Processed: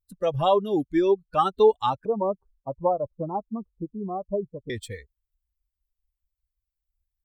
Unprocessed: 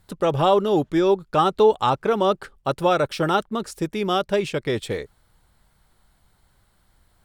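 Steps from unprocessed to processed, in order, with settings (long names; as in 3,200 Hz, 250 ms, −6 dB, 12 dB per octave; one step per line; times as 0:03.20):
spectral dynamics exaggerated over time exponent 2
0:02.05–0:04.70: Butterworth low-pass 1,100 Hz 96 dB per octave
dynamic equaliser 160 Hz, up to −4 dB, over −46 dBFS, Q 3.4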